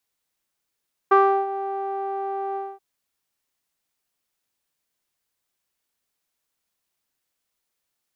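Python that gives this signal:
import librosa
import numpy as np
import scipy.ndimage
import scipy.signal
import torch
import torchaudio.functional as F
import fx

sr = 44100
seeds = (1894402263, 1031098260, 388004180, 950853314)

y = fx.sub_voice(sr, note=67, wave='saw', cutoff_hz=880.0, q=3.7, env_oct=0.5, env_s=0.28, attack_ms=10.0, decay_s=0.34, sustain_db=-15.0, release_s=0.23, note_s=1.45, slope=12)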